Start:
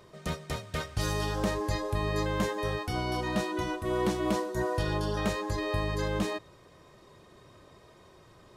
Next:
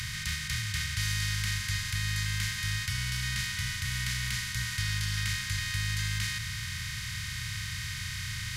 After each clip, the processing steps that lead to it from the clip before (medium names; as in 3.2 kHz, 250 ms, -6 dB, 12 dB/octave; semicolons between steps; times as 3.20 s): spectral levelling over time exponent 0.2; elliptic band-stop 120–1800 Hz, stop band 80 dB; bass shelf 69 Hz -10.5 dB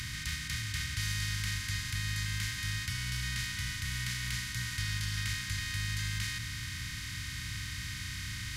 hum 60 Hz, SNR 13 dB; trim -3.5 dB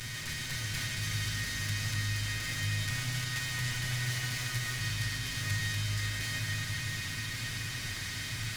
comb filter that takes the minimum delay 8 ms; peak limiter -28 dBFS, peak gain reduction 7.5 dB; algorithmic reverb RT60 4.9 s, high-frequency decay 0.8×, pre-delay 110 ms, DRR 1 dB; trim +1.5 dB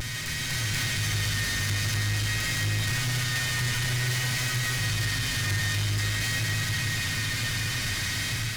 level rider gain up to 4 dB; saturation -30.5 dBFS, distortion -11 dB; vibrato 0.5 Hz 24 cents; trim +7 dB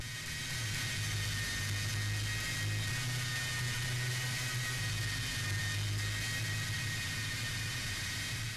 brick-wall FIR low-pass 13 kHz; trim -8.5 dB